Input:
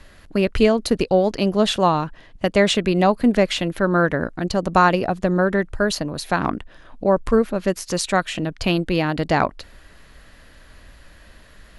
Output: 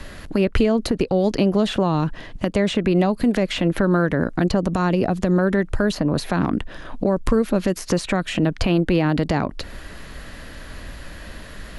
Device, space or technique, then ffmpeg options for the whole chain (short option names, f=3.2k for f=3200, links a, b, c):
mastering chain: -filter_complex "[0:a]equalizer=f=220:t=o:w=2.2:g=3.5,acrossover=split=400|2500[a][b][c];[a]acompressor=threshold=-21dB:ratio=4[d];[b]acompressor=threshold=-26dB:ratio=4[e];[c]acompressor=threshold=-41dB:ratio=4[f];[d][e][f]amix=inputs=3:normalize=0,acompressor=threshold=-25dB:ratio=2.5,alimiter=level_in=17dB:limit=-1dB:release=50:level=0:latency=1,volume=-7.5dB"